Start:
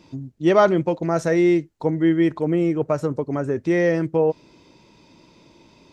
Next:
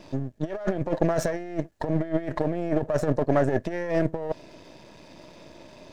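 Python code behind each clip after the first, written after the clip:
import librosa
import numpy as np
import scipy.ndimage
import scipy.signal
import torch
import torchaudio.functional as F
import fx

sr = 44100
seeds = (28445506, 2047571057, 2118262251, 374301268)

y = np.where(x < 0.0, 10.0 ** (-12.0 / 20.0) * x, x)
y = fx.over_compress(y, sr, threshold_db=-26.0, ratio=-0.5)
y = fx.small_body(y, sr, hz=(620.0, 1700.0), ring_ms=25, db=11)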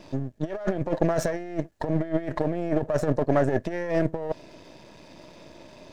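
y = x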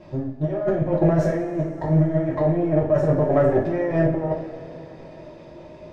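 y = fx.lowpass(x, sr, hz=1400.0, slope=6)
y = fx.rev_double_slope(y, sr, seeds[0], early_s=0.45, late_s=4.2, knee_db=-18, drr_db=-5.5)
y = y * 10.0 ** (-2.0 / 20.0)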